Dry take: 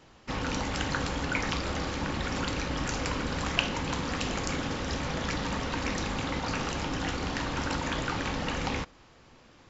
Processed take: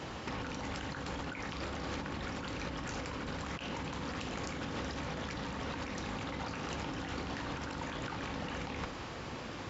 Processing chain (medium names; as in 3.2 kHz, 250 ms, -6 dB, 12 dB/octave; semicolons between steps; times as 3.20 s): high-pass 55 Hz; treble shelf 5.4 kHz -6 dB; compressor with a negative ratio -43 dBFS, ratio -1; trim +3.5 dB